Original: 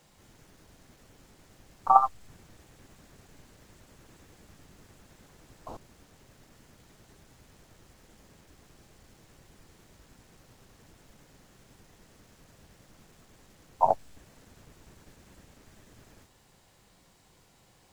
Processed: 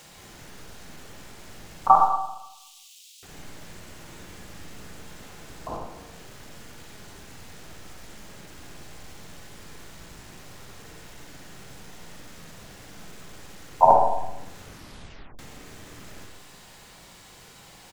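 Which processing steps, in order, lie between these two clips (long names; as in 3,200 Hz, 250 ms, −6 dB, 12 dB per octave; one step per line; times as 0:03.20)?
0:01.95–0:03.23: Butterworth high-pass 2,800 Hz 48 dB per octave
repeating echo 85 ms, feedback 55%, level −17.5 dB
convolution reverb RT60 0.80 s, pre-delay 37 ms, DRR −0.5 dB
0:14.63: tape stop 0.76 s
one half of a high-frequency compander encoder only
level +6.5 dB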